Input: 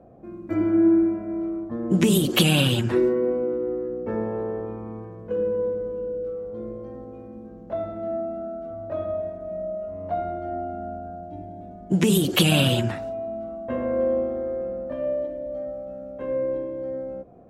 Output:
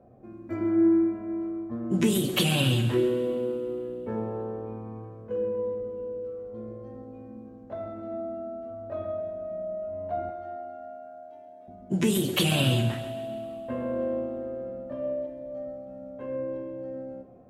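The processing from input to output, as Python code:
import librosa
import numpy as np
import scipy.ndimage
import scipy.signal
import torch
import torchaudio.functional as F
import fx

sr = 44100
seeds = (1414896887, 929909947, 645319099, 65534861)

p1 = fx.highpass(x, sr, hz=590.0, slope=12, at=(10.29, 11.68))
p2 = p1 + fx.echo_feedback(p1, sr, ms=134, feedback_pct=49, wet_db=-13.5, dry=0)
p3 = fx.rev_double_slope(p2, sr, seeds[0], early_s=0.25, late_s=2.7, knee_db=-19, drr_db=5.0)
y = p3 * 10.0 ** (-6.0 / 20.0)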